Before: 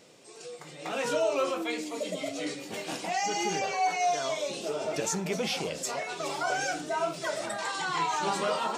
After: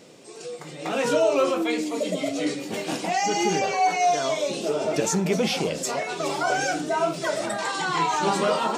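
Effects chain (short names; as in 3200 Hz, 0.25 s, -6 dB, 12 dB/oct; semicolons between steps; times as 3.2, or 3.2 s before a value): bell 240 Hz +5.5 dB 2.2 oct; gain +4.5 dB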